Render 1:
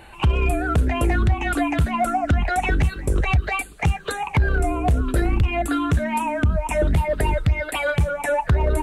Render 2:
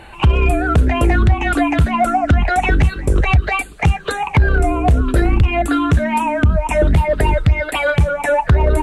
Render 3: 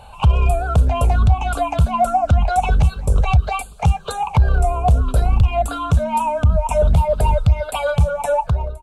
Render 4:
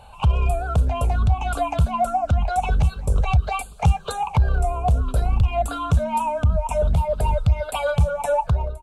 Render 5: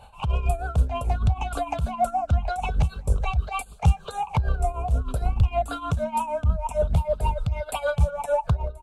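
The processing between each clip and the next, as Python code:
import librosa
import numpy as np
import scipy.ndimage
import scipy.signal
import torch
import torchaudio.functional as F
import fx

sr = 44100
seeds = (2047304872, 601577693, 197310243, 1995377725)

y1 = fx.high_shelf(x, sr, hz=10000.0, db=-10.0)
y1 = F.gain(torch.from_numpy(y1), 6.0).numpy()
y2 = fx.fade_out_tail(y1, sr, length_s=0.53)
y2 = fx.fixed_phaser(y2, sr, hz=780.0, stages=4)
y3 = fx.rider(y2, sr, range_db=3, speed_s=0.5)
y3 = F.gain(torch.from_numpy(y3), -4.0).numpy()
y4 = fx.tremolo_shape(y3, sr, shape='triangle', hz=6.5, depth_pct=80)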